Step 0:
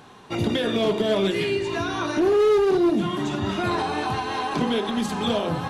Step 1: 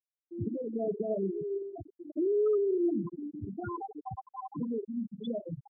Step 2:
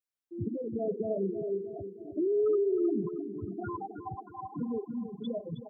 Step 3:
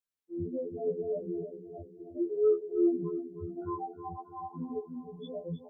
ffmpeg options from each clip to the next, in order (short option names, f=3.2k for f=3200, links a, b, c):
-af "afftfilt=real='re*gte(hypot(re,im),0.355)':imag='im*gte(hypot(re,im),0.355)':win_size=1024:overlap=0.75,volume=-8.5dB"
-af "aecho=1:1:315|630|945|1260|1575:0.282|0.144|0.0733|0.0374|0.0191"
-af "afftfilt=real='re*2*eq(mod(b,4),0)':imag='im*2*eq(mod(b,4),0)':win_size=2048:overlap=0.75"